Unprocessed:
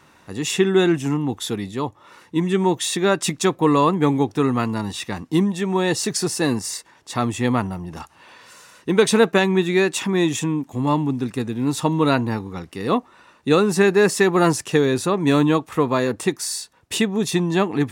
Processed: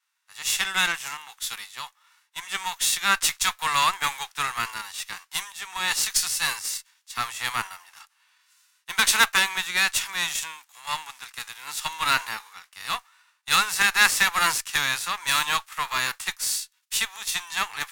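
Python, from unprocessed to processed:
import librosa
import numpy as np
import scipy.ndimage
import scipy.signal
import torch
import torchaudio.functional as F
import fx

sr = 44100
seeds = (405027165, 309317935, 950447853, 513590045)

y = fx.envelope_flatten(x, sr, power=0.6)
y = scipy.signal.sosfilt(scipy.signal.butter(4, 1100.0, 'highpass', fs=sr, output='sos'), y)
y = fx.cheby_harmonics(y, sr, harmonics=(2, 8), levels_db=(-7, -20), full_scale_db=-4.0)
y = fx.band_widen(y, sr, depth_pct=70)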